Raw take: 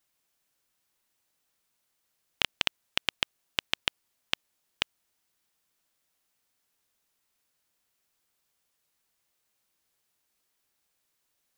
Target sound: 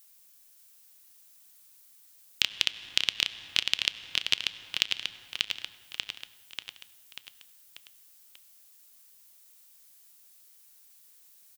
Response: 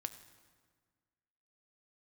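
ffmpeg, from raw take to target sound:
-filter_complex "[0:a]aecho=1:1:589|1178|1767|2356|2945|3534:0.501|0.246|0.12|0.059|0.0289|0.0142,asplit=2[s0][s1];[1:a]atrim=start_sample=2205[s2];[s1][s2]afir=irnorm=-1:irlink=0,volume=1.88[s3];[s0][s3]amix=inputs=2:normalize=0,crystalizer=i=4.5:c=0,acrossover=split=570|2000|5700[s4][s5][s6][s7];[s4]acompressor=threshold=0.00794:ratio=4[s8];[s5]acompressor=threshold=0.0158:ratio=4[s9];[s6]acompressor=threshold=0.141:ratio=4[s10];[s7]acompressor=threshold=0.00398:ratio=4[s11];[s8][s9][s10][s11]amix=inputs=4:normalize=0,volume=0.562"

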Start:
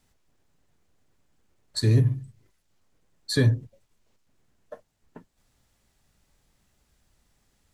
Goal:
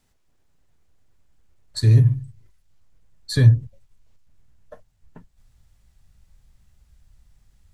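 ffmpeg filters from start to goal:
-af "asubboost=boost=6.5:cutoff=120"

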